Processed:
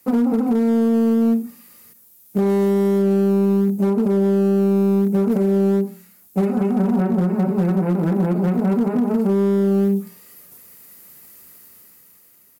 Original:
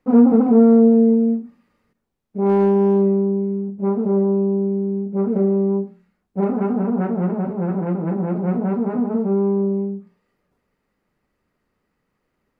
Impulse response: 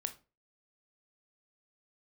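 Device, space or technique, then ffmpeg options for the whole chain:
FM broadcast chain: -filter_complex "[0:a]asplit=3[link_01][link_02][link_03];[link_01]afade=type=out:start_time=6.39:duration=0.02[link_04];[link_02]aecho=1:1:5.4:0.69,afade=type=in:start_time=6.39:duration=0.02,afade=type=out:start_time=7.81:duration=0.02[link_05];[link_03]afade=type=in:start_time=7.81:duration=0.02[link_06];[link_04][link_05][link_06]amix=inputs=3:normalize=0,highpass=frequency=74:width=0.5412,highpass=frequency=74:width=1.3066,dynaudnorm=framelen=240:gausssize=9:maxgain=9.5dB,acrossover=split=430|870[link_07][link_08][link_09];[link_07]acompressor=threshold=-16dB:ratio=4[link_10];[link_08]acompressor=threshold=-32dB:ratio=4[link_11];[link_09]acompressor=threshold=-40dB:ratio=4[link_12];[link_10][link_11][link_12]amix=inputs=3:normalize=0,aemphasis=mode=production:type=75fm,alimiter=limit=-15.5dB:level=0:latency=1:release=489,asoftclip=type=hard:threshold=-17.5dB,lowpass=frequency=15000:width=0.5412,lowpass=frequency=15000:width=1.3066,aemphasis=mode=production:type=75fm,volume=6dB"

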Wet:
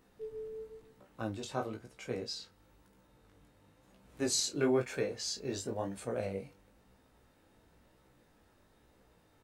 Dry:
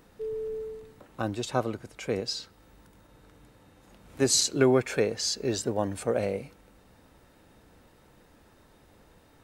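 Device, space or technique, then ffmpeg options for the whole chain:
double-tracked vocal: -filter_complex "[0:a]asplit=2[link_01][link_02];[link_02]adelay=31,volume=-11.5dB[link_03];[link_01][link_03]amix=inputs=2:normalize=0,flanger=delay=15.5:depth=5.6:speed=1,volume=-5.5dB"

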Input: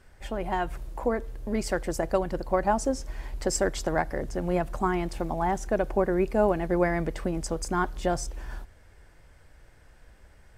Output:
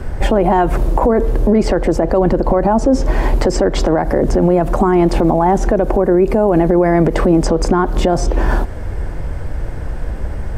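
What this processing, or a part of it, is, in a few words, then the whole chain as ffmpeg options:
mastering chain: -filter_complex "[0:a]asettb=1/sr,asplit=3[link_01][link_02][link_03];[link_01]atrim=end=1.504[link_04];[link_02]atrim=start=1.5:end=2.91,asetpts=PTS-STARTPTS,afade=type=in:duration=0.004:curve=qsin,afade=type=out:start_time=1.406:duration=0.004:curve=qsin,highshelf=frequency=6300:gain=-8[link_05];[link_03]atrim=start=2.906[link_06];[link_04][link_05]acrossfade=duration=0.004:curve1=hsin:curve2=qsin[link_07];[link_07][link_06]acrossfade=duration=0.004:curve1=qsin:curve2=hsin,equalizer=frequency=1000:width_type=o:width=0.77:gain=2,acrossover=split=200|5500[link_08][link_09][link_10];[link_08]acompressor=threshold=-47dB:ratio=4[link_11];[link_09]acompressor=threshold=-25dB:ratio=4[link_12];[link_10]acompressor=threshold=-53dB:ratio=4[link_13];[link_11][link_12][link_13]amix=inputs=3:normalize=0,acompressor=threshold=-35dB:ratio=2,tiltshelf=frequency=970:gain=8.5,alimiter=level_in=28.5dB:limit=-1dB:release=50:level=0:latency=1,volume=-3.5dB"

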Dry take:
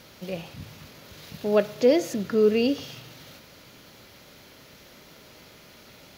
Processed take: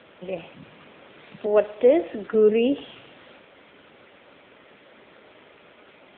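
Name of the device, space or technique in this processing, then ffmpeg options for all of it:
telephone: -filter_complex "[0:a]asettb=1/sr,asplit=3[link_01][link_02][link_03];[link_01]atrim=end=1.464[link_04];[link_02]atrim=start=1.46:end=2.34,asetpts=PTS-STARTPTS,afade=type=in:duration=0.004:curve=qsin,afade=type=out:start_time=0.876:duration=0.004:curve=qsin,highpass=290[link_05];[link_03]atrim=start=2.336[link_06];[link_04][link_05]acrossfade=duration=0.004:curve1=hsin:curve2=qsin[link_07];[link_07][link_06]acrossfade=duration=0.004:curve1=qsin:curve2=hsin,highpass=270,lowpass=3100,volume=4dB" -ar 8000 -c:a libopencore_amrnb -b:a 7950

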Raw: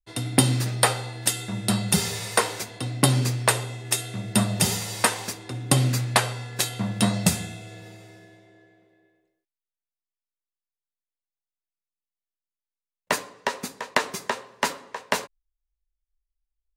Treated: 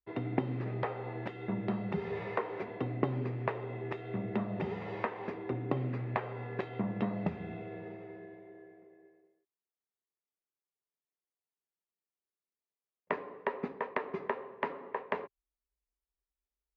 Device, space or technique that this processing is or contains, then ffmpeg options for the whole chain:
bass amplifier: -af "acompressor=threshold=-29dB:ratio=5,highpass=71,equalizer=frequency=110:width_type=q:width=4:gain=-8,equalizer=frequency=400:width_type=q:width=4:gain=8,equalizer=frequency=1500:width_type=q:width=4:gain=-7,lowpass=frequency=2000:width=0.5412,lowpass=frequency=2000:width=1.3066"

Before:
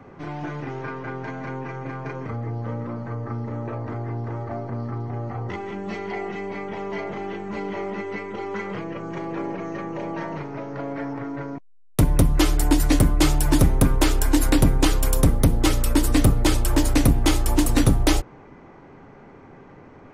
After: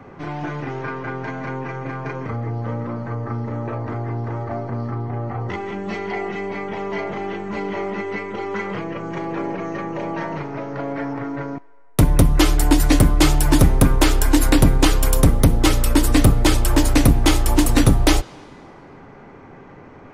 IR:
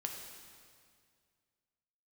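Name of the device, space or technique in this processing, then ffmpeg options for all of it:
filtered reverb send: -filter_complex "[0:a]asplit=2[link_01][link_02];[link_02]highpass=500,lowpass=5800[link_03];[1:a]atrim=start_sample=2205[link_04];[link_03][link_04]afir=irnorm=-1:irlink=0,volume=-14dB[link_05];[link_01][link_05]amix=inputs=2:normalize=0,asettb=1/sr,asplit=3[link_06][link_07][link_08];[link_06]atrim=end=4.944[link_09];[link_07]atrim=start=4.94:end=5.4,asetpts=PTS-STARTPTS,afade=type=in:duration=0.004:curve=qsin,afade=type=out:start_time=0.456:duration=0.004:curve=qsin,bass=frequency=250:gain=0,treble=frequency=4000:gain=-7[link_10];[link_08]atrim=start=5.396[link_11];[link_09][link_10]acrossfade=duration=0.004:curve1=hsin:curve2=qsin[link_12];[link_12][link_11]acrossfade=duration=0.004:curve1=qsin:curve2=hsin,volume=3.5dB"

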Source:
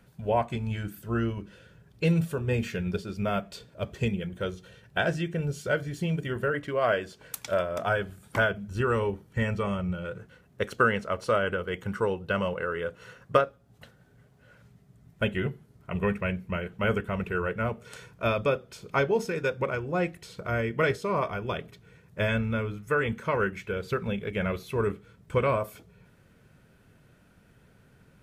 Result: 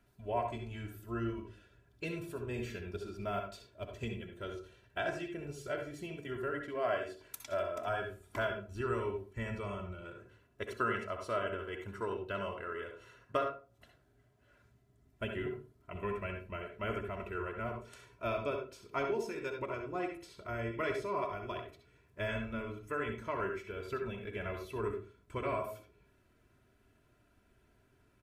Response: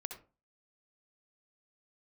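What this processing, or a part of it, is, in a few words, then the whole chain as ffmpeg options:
microphone above a desk: -filter_complex "[0:a]aecho=1:1:3:0.67[link_01];[1:a]atrim=start_sample=2205[link_02];[link_01][link_02]afir=irnorm=-1:irlink=0,volume=-8dB"

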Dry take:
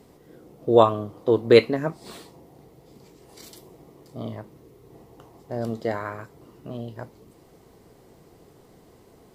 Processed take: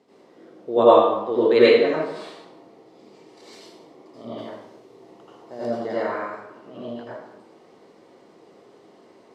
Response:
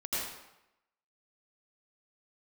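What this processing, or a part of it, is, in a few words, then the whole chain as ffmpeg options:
supermarket ceiling speaker: -filter_complex "[0:a]highpass=270,lowpass=5100[link_01];[1:a]atrim=start_sample=2205[link_02];[link_01][link_02]afir=irnorm=-1:irlink=0,asplit=3[link_03][link_04][link_05];[link_03]afade=type=out:start_time=4.37:duration=0.02[link_06];[link_04]adynamicequalizer=threshold=0.00178:dfrequency=3200:dqfactor=0.7:tfrequency=3200:tqfactor=0.7:attack=5:release=100:ratio=0.375:range=4:mode=boostabove:tftype=highshelf,afade=type=in:start_time=4.37:duration=0.02,afade=type=out:start_time=5.7:duration=0.02[link_07];[link_05]afade=type=in:start_time=5.7:duration=0.02[link_08];[link_06][link_07][link_08]amix=inputs=3:normalize=0,volume=-1.5dB"

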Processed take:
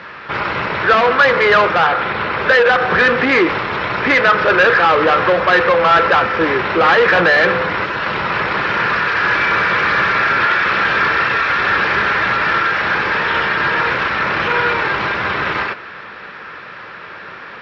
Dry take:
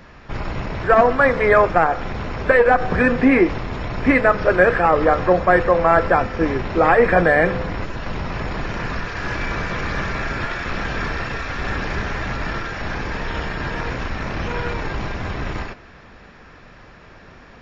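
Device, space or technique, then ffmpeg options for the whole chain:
overdrive pedal into a guitar cabinet: -filter_complex "[0:a]asplit=2[link_01][link_02];[link_02]highpass=frequency=720:poles=1,volume=23dB,asoftclip=type=tanh:threshold=-2dB[link_03];[link_01][link_03]amix=inputs=2:normalize=0,lowpass=frequency=4100:poles=1,volume=-6dB,highpass=84,equalizer=frequency=260:width_type=q:width=4:gain=-7,equalizer=frequency=700:width_type=q:width=4:gain=-7,equalizer=frequency=1400:width_type=q:width=4:gain=4,lowpass=frequency=4600:width=0.5412,lowpass=frequency=4600:width=1.3066,asettb=1/sr,asplit=3[link_04][link_05][link_06];[link_04]atrim=end=1.874[link_07];[link_05]atrim=start=1.87:end=2.42,asetpts=PTS-STARTPTS,afade=type=in:duration=0.004:curve=qsin,afade=type=out:start_time=0.546:duration=0.004:curve=qsin,lowpass=frequency=5000:width=0.5412,lowpass=frequency=5000:width=1.3066[link_08];[link_06]atrim=start=2.416[link_09];[link_07][link_08]acrossfade=duration=0.004:curve1=hsin:curve2=qsin[link_10];[link_10][link_09]acrossfade=duration=0.004:curve1=qsin:curve2=hsin,volume=-2dB"

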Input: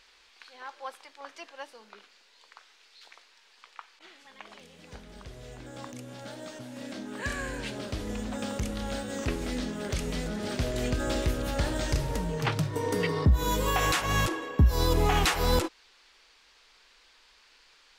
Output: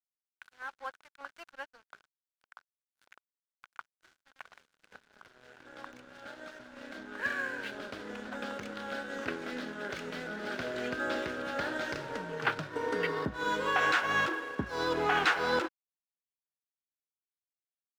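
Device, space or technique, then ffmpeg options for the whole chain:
pocket radio on a weak battery: -af "highpass=270,lowpass=3800,aeval=exprs='sgn(val(0))*max(abs(val(0))-0.00335,0)':channel_layout=same,equalizer=frequency=1500:width_type=o:width=0.33:gain=11.5,volume=-2dB"

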